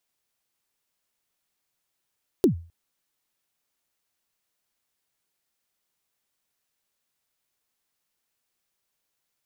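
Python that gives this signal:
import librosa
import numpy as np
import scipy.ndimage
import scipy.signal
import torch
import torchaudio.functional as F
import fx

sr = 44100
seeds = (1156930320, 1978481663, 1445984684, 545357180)

y = fx.drum_kick(sr, seeds[0], length_s=0.26, level_db=-11, start_hz=420.0, end_hz=84.0, sweep_ms=109.0, decay_s=0.37, click=True)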